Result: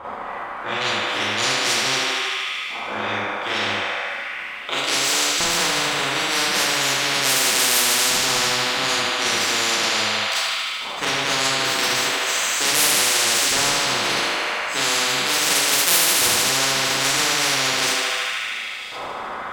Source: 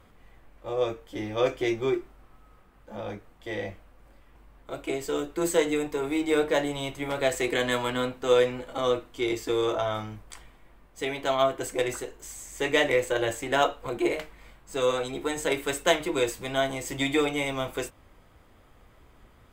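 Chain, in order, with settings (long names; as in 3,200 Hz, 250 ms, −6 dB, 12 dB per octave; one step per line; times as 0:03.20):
stylus tracing distortion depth 0.43 ms
auto-filter band-pass saw up 0.37 Hz 860–4,500 Hz
on a send: feedback echo with a high-pass in the loop 76 ms, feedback 79%, high-pass 500 Hz, level −7 dB
on the sum: four-comb reverb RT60 0.43 s, combs from 30 ms, DRR −7.5 dB
every bin compressed towards the loudest bin 10 to 1
level +7.5 dB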